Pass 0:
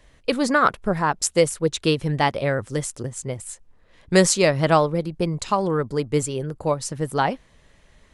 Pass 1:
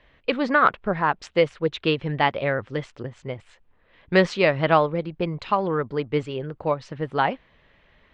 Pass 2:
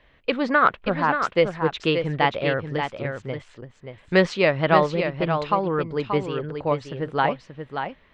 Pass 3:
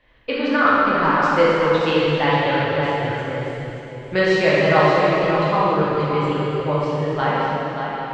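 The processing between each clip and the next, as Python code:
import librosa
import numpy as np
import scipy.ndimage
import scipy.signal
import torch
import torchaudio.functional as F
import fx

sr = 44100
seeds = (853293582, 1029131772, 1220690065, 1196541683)

y1 = scipy.signal.sosfilt(scipy.signal.butter(4, 3200.0, 'lowpass', fs=sr, output='sos'), x)
y1 = fx.tilt_eq(y1, sr, slope=1.5)
y2 = y1 + 10.0 ** (-7.0 / 20.0) * np.pad(y1, (int(581 * sr / 1000.0), 0))[:len(y1)]
y3 = fx.rev_plate(y2, sr, seeds[0], rt60_s=3.0, hf_ratio=0.95, predelay_ms=0, drr_db=-8.5)
y3 = y3 * librosa.db_to_amplitude(-4.5)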